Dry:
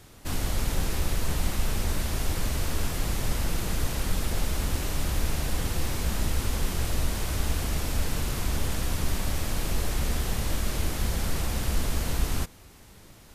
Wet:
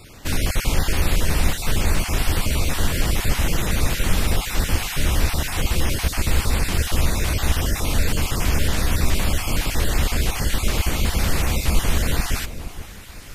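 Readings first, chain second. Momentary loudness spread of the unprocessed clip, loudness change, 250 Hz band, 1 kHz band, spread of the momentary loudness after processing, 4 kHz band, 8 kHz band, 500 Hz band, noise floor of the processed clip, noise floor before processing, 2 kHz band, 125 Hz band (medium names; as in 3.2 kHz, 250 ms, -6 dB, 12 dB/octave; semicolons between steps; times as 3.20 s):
1 LU, +7.5 dB, +7.0 dB, +7.5 dB, 2 LU, +8.5 dB, +7.0 dB, +7.0 dB, -37 dBFS, -51 dBFS, +10.0 dB, +7.0 dB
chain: random holes in the spectrogram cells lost 22%; peaking EQ 2.4 kHz +4.5 dB 1.3 oct; echo whose repeats swap between lows and highs 471 ms, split 970 Hz, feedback 52%, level -11 dB; trim +7.5 dB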